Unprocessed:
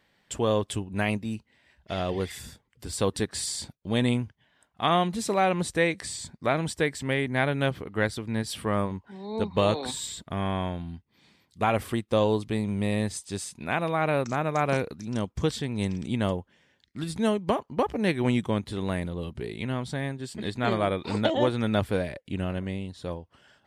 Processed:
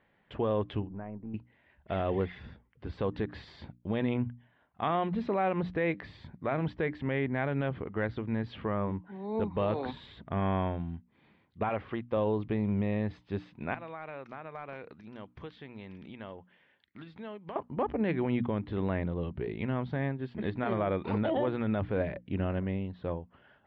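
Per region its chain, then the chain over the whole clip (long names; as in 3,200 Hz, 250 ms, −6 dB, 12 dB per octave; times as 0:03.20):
0:00.87–0:01.34: gain on one half-wave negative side −3 dB + transistor ladder low-pass 1,500 Hz, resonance 20% + downward compressor, threshold −36 dBFS
0:11.69–0:12.17: de-essing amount 95% + high-pass filter 44 Hz + low-shelf EQ 490 Hz −8 dB
0:13.74–0:17.56: spectral tilt +3 dB per octave + gain into a clipping stage and back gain 15 dB + downward compressor 2.5 to 1, threshold −44 dBFS
whole clip: Bessel low-pass filter 1,900 Hz, order 6; mains-hum notches 60/120/180/240/300 Hz; brickwall limiter −20.5 dBFS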